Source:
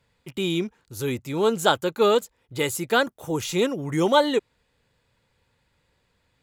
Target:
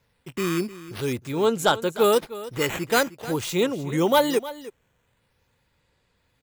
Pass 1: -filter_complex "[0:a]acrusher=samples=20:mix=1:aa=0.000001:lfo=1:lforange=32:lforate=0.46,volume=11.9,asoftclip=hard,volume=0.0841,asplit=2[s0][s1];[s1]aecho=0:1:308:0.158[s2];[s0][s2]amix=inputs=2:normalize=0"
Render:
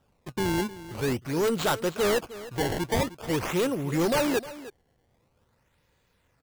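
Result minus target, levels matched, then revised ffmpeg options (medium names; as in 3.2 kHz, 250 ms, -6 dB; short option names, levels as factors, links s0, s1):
overload inside the chain: distortion +17 dB; decimation with a swept rate: distortion +9 dB
-filter_complex "[0:a]acrusher=samples=5:mix=1:aa=0.000001:lfo=1:lforange=8:lforate=0.46,volume=3.35,asoftclip=hard,volume=0.299,asplit=2[s0][s1];[s1]aecho=0:1:308:0.158[s2];[s0][s2]amix=inputs=2:normalize=0"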